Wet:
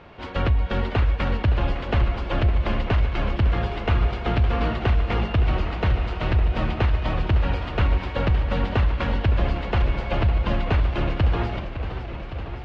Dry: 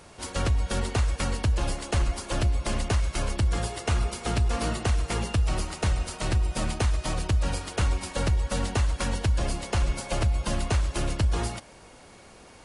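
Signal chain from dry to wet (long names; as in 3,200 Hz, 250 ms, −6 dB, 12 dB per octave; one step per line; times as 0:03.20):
low-pass filter 3,200 Hz 24 dB per octave
feedback echo with a swinging delay time 561 ms, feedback 76%, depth 156 cents, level −11 dB
level +4 dB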